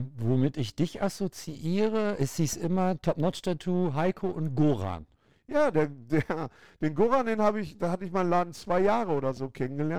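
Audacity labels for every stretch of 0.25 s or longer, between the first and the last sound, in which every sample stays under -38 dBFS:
5.020000	5.490000	silence
6.480000	6.820000	silence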